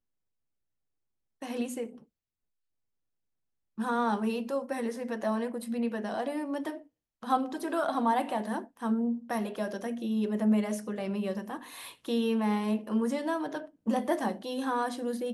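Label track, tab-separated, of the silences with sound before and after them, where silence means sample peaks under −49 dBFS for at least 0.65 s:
2.030000	3.780000	silence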